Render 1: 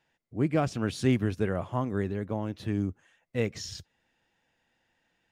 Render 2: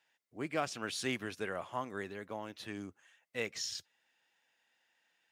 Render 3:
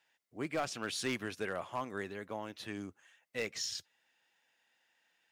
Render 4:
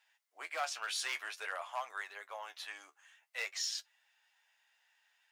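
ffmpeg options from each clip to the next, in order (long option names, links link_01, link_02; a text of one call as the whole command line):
ffmpeg -i in.wav -af "highpass=frequency=1400:poles=1,volume=1dB" out.wav
ffmpeg -i in.wav -af "volume=28.5dB,asoftclip=hard,volume=-28.5dB,volume=1dB" out.wav
ffmpeg -i in.wav -af "flanger=delay=9.1:depth=4.5:regen=41:speed=0.52:shape=sinusoidal,highpass=frequency=740:width=0.5412,highpass=frequency=740:width=1.3066,volume=5.5dB" out.wav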